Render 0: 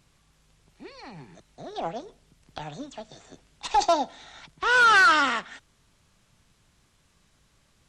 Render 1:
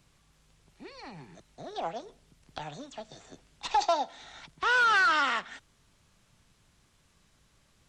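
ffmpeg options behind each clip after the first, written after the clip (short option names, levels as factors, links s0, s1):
-filter_complex "[0:a]acrossover=split=520|6700[s0][s1][s2];[s0]acompressor=threshold=0.00708:ratio=4[s3];[s1]acompressor=threshold=0.1:ratio=4[s4];[s2]acompressor=threshold=0.00141:ratio=4[s5];[s3][s4][s5]amix=inputs=3:normalize=0,volume=0.841"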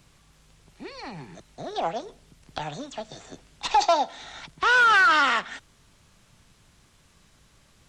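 -af "asoftclip=type=tanh:threshold=0.133,volume=2.24"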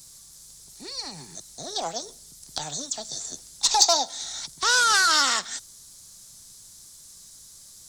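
-af "aexciter=amount=7.7:drive=8.4:freq=4100,volume=0.631"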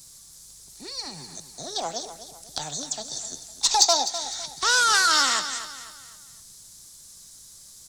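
-af "aecho=1:1:253|506|759|1012:0.251|0.0955|0.0363|0.0138"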